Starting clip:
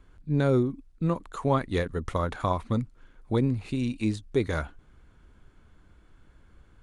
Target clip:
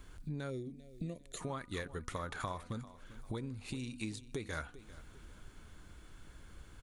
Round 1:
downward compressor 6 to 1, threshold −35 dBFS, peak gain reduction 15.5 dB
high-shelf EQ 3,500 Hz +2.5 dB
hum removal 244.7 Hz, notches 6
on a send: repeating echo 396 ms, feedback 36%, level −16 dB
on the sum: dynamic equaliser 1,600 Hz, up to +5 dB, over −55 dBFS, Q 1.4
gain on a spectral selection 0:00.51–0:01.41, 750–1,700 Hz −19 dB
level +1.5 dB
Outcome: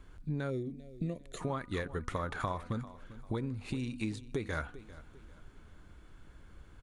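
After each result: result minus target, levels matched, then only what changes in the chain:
8,000 Hz band −8.0 dB; downward compressor: peak gain reduction −5.5 dB
change: high-shelf EQ 3,500 Hz +13 dB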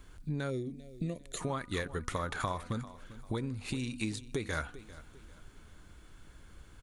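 downward compressor: peak gain reduction −5.5 dB
change: downward compressor 6 to 1, threshold −41.5 dBFS, peak gain reduction 21 dB

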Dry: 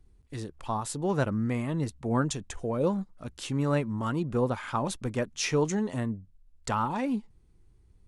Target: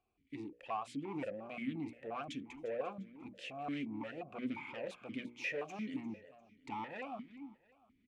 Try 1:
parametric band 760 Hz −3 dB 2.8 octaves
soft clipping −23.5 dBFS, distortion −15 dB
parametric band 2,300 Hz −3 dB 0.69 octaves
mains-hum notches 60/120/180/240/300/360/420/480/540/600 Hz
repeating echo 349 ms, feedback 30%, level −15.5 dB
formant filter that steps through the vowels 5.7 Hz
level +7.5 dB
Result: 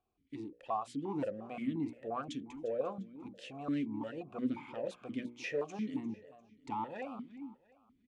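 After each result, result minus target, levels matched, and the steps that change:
2,000 Hz band −7.0 dB; soft clipping: distortion −8 dB
change: second parametric band 2,300 Hz +5 dB 0.69 octaves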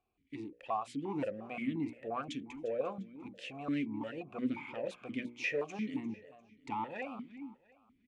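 soft clipping: distortion −8 dB
change: soft clipping −32.5 dBFS, distortion −7 dB

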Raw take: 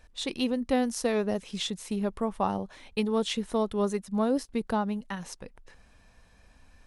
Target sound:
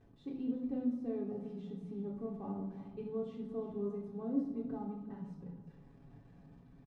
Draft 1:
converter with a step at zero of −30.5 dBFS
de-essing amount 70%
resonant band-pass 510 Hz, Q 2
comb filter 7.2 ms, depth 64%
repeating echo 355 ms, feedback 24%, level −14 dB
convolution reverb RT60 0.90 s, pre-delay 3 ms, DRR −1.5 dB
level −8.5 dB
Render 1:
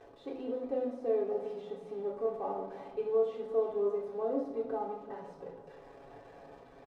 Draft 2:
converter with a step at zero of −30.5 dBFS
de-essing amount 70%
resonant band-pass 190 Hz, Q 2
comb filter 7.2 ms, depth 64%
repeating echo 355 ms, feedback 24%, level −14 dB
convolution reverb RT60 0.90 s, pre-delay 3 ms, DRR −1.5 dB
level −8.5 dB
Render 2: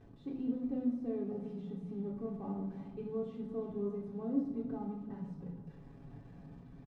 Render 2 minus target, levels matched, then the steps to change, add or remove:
converter with a step at zero: distortion +5 dB
change: converter with a step at zero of −37 dBFS

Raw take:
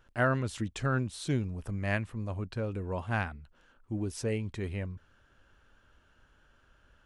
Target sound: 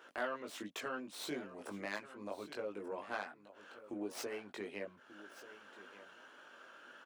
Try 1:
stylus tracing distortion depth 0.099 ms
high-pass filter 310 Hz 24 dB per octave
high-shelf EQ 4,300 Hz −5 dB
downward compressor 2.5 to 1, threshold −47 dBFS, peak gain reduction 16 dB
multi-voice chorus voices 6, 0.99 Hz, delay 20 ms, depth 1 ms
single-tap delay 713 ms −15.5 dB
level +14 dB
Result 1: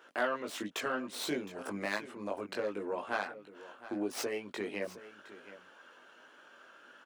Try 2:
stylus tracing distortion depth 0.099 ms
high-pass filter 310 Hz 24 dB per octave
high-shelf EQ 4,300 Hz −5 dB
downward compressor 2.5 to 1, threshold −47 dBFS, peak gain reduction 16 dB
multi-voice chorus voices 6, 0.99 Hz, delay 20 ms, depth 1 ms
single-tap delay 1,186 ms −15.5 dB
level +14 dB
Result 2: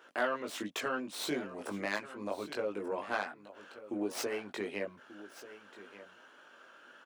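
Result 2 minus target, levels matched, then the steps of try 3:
downward compressor: peak gain reduction −6.5 dB
stylus tracing distortion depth 0.099 ms
high-pass filter 310 Hz 24 dB per octave
high-shelf EQ 4,300 Hz −5 dB
downward compressor 2.5 to 1, threshold −58 dBFS, peak gain reduction 22.5 dB
multi-voice chorus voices 6, 0.99 Hz, delay 20 ms, depth 1 ms
single-tap delay 1,186 ms −15.5 dB
level +14 dB

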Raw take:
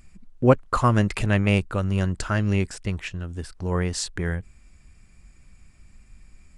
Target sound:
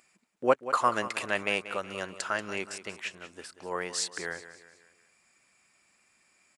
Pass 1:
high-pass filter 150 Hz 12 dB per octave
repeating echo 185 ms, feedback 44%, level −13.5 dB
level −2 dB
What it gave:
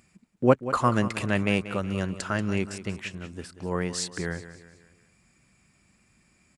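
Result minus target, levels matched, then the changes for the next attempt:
125 Hz band +15.5 dB
change: high-pass filter 530 Hz 12 dB per octave

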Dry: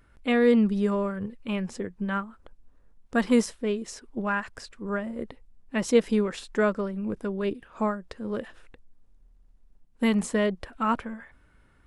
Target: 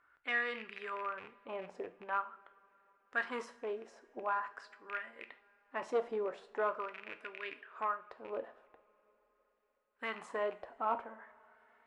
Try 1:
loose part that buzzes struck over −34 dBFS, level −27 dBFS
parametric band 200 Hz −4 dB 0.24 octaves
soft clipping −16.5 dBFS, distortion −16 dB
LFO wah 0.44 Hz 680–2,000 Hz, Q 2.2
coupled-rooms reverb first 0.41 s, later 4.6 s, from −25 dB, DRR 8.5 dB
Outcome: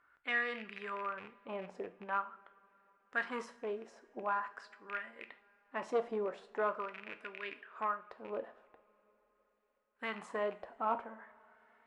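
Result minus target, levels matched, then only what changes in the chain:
250 Hz band +3.0 dB
change: parametric band 200 Hz −13.5 dB 0.24 octaves

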